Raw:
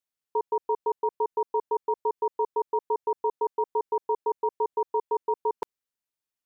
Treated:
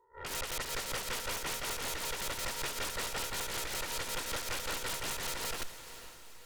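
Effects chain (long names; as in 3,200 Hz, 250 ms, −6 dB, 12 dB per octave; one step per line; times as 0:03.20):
peak hold with a rise ahead of every peak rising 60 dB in 0.58 s
noise gate −36 dBFS, range −14 dB
high-pass filter 620 Hz 6 dB per octave
in parallel at +2 dB: brickwall limiter −28.5 dBFS, peak gain reduction 9 dB
on the sum: downward compressor 16 to 1, threshold −26 dBFS, peak gain reduction 6 dB
harmonic generator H 5 −28 dB, 7 −17 dB, 8 −11 dB, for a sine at −19.5 dBFS
sine wavefolder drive 19 dB, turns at −19 dBFS
amplitude tremolo 5.3 Hz, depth 70%
soft clipping −26.5 dBFS, distortion −12 dB
feedback delay with all-pass diffusion 473 ms, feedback 46%, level −12 dB
highs frequency-modulated by the lows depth 0.17 ms
level −7 dB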